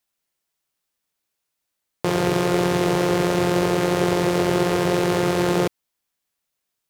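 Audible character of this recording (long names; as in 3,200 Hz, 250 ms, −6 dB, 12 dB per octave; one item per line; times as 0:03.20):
background noise floor −80 dBFS
spectral slope −5.5 dB per octave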